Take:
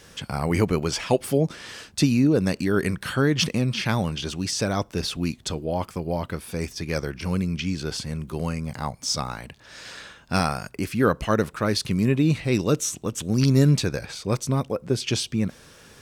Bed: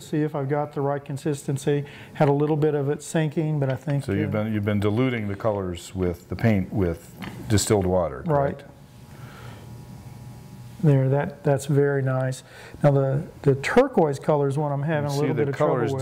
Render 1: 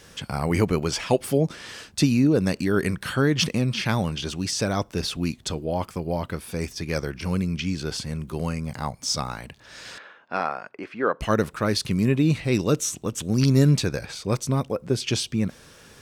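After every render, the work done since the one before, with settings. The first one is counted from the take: 9.98–11.21 BPF 420–2000 Hz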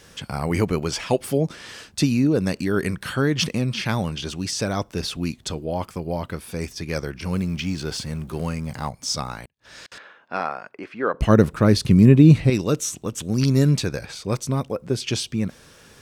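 7.33–8.89 G.711 law mismatch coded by mu; 9.44–9.92 flipped gate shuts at -31 dBFS, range -36 dB; 11.14–12.5 low shelf 500 Hz +11 dB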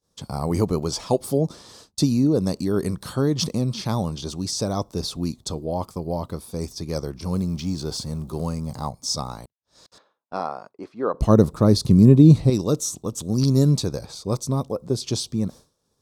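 expander -35 dBFS; band shelf 2100 Hz -14 dB 1.3 oct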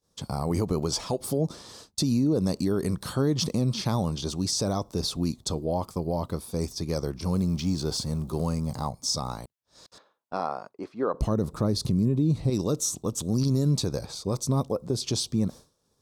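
compressor 5:1, threshold -18 dBFS, peak gain reduction 10 dB; limiter -16.5 dBFS, peak gain reduction 6.5 dB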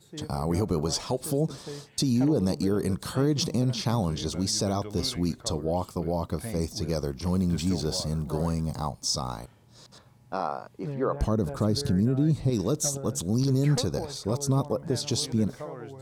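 add bed -17 dB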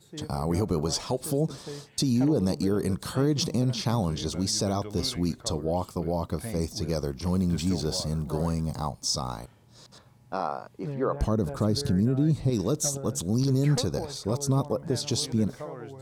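nothing audible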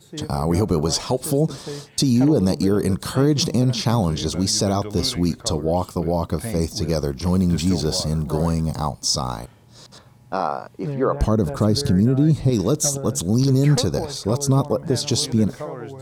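gain +7 dB

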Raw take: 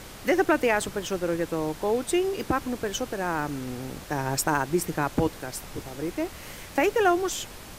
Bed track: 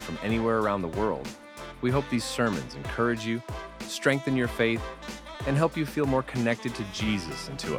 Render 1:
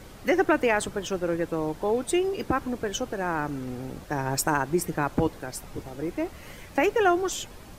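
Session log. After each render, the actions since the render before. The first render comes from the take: denoiser 8 dB, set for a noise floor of -43 dBFS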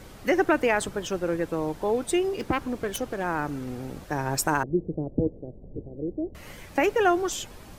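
2.37–3.24 self-modulated delay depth 0.18 ms; 4.63–6.35 steep low-pass 560 Hz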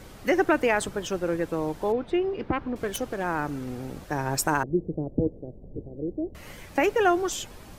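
1.92–2.76 air absorption 320 m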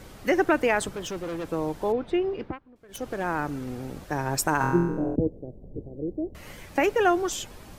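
0.93–1.48 hard clip -29.5 dBFS; 2.29–3.18 dip -23 dB, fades 0.30 s equal-power; 4.58–5.16 flutter echo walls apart 4 m, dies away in 0.96 s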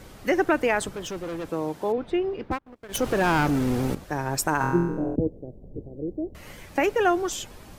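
1.5–1.98 HPF 120 Hz; 2.51–3.95 sample leveller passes 3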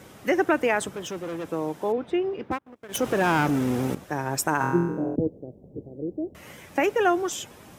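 HPF 110 Hz 12 dB/oct; bell 4400 Hz -6 dB 0.25 oct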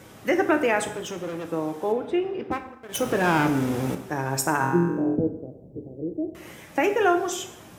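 plate-style reverb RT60 0.76 s, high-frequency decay 0.8×, DRR 6.5 dB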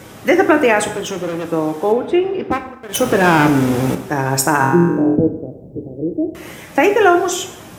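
gain +9.5 dB; limiter -1 dBFS, peak gain reduction 2 dB

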